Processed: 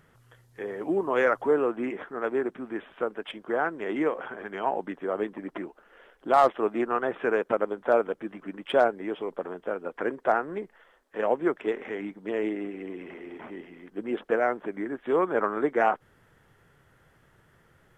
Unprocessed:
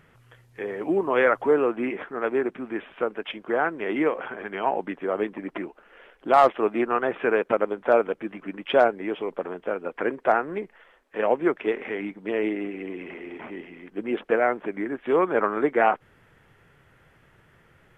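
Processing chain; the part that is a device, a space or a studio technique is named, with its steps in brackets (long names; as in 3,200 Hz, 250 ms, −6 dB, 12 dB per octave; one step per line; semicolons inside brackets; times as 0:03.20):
exciter from parts (in parallel at −4 dB: high-pass filter 2,300 Hz 24 dB per octave + soft clipping −29 dBFS, distortion −13 dB)
on the sum: level −3 dB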